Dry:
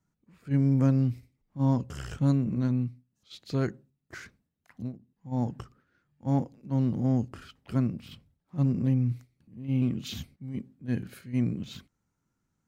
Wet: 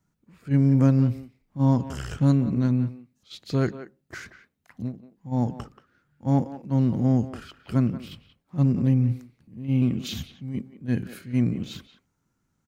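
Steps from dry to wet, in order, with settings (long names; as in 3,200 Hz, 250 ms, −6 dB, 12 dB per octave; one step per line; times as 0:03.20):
far-end echo of a speakerphone 180 ms, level −12 dB
level +4.5 dB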